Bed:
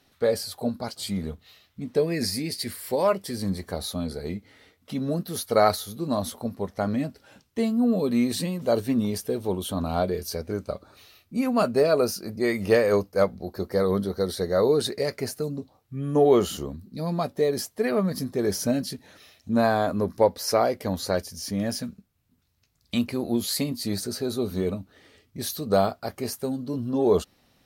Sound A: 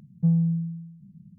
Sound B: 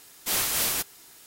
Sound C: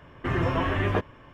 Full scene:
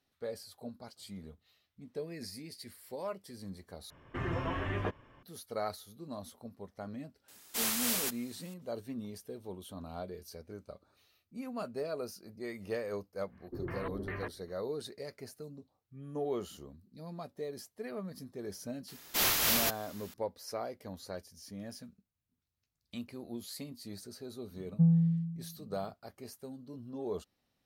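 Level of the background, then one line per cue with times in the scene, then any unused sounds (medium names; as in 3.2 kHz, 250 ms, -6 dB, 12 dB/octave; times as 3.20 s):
bed -17 dB
3.90 s: replace with C -9.5 dB
7.28 s: add B -6.5 dB + bass shelf 160 Hz -6.5 dB
13.28 s: add C -16.5 dB, fades 0.10 s + LFO low-pass square 2.5 Hz 380–2000 Hz
18.88 s: add B -0.5 dB + peaking EQ 8.8 kHz -8.5 dB 0.64 oct
24.56 s: add A -3.5 dB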